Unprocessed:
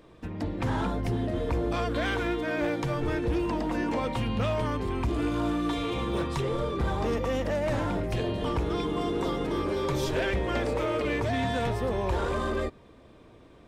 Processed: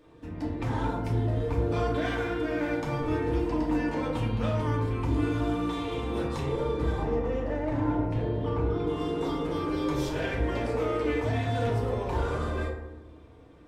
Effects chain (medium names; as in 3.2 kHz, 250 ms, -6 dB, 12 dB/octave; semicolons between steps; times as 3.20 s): 7.02–8.87 s: low-pass 1.5 kHz 6 dB/octave; FDN reverb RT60 0.99 s, low-frequency decay 1.5×, high-frequency decay 0.4×, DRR -3.5 dB; trim -7 dB